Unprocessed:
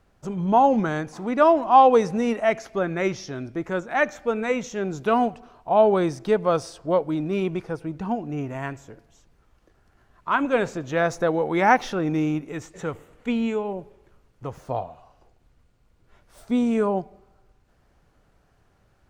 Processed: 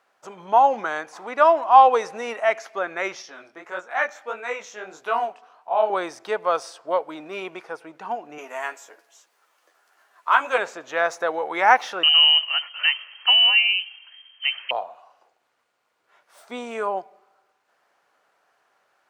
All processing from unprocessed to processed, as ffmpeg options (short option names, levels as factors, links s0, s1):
-filter_complex "[0:a]asettb=1/sr,asplit=3[s0][s1][s2];[s0]atrim=end=3.224[s3];[s1]atrim=start=3.22:end=5.9,asetpts=PTS-STARTPTS,afade=t=in:d=0.004:c=qsin,afade=t=out:st=2.676:d=0.004:c=qsin,lowshelf=f=430:g=-2.5,flanger=delay=16:depth=7.3:speed=1.6[s4];[s2]atrim=start=5.896[s5];[s3][s4]acrossfade=d=0.004:c1=hsin:c2=qsin[s6];[s6][s5]acrossfade=d=0.004:c1=qsin:c2=hsin,asettb=1/sr,asplit=3[s7][s8][s9];[s7]atrim=end=8.384[s10];[s8]atrim=start=8.38:end=10.58,asetpts=PTS-STARTPTS,afade=t=in:d=0.004:c=qsin,afade=t=out:st=2.196:d=0.004:c=qsin,highpass=310,highshelf=f=5500:g=11,asplit=2[s11][s12];[s12]adelay=12,volume=0.531[s13];[s11][s13]amix=inputs=2:normalize=0,atrim=end_sample=97020[s14];[s9]atrim=start=10.576[s15];[s10][s14]acrossfade=d=0.004:c1=hsin:c2=qsin[s16];[s16][s15]acrossfade=d=0.004:c1=qsin:c2=hsin,asettb=1/sr,asplit=3[s17][s18][s19];[s17]atrim=end=12.034[s20];[s18]atrim=start=12.03:end=14.71,asetpts=PTS-STARTPTS,afade=t=in:d=0.004:c=qsin,afade=t=out:st=2.676:d=0.004:c=qsin,acontrast=64,lowpass=f=2700:t=q:w=0.5098,lowpass=f=2700:t=q:w=0.6013,lowpass=f=2700:t=q:w=0.9,lowpass=f=2700:t=q:w=2.563,afreqshift=-3200[s21];[s19]atrim=start=14.706[s22];[s20][s21]acrossfade=d=0.004:c1=hsin:c2=qsin[s23];[s23][s22]acrossfade=d=0.004:c1=qsin:c2=hsin,highpass=630,equalizer=f=1200:t=o:w=2.9:g=5,volume=0.891"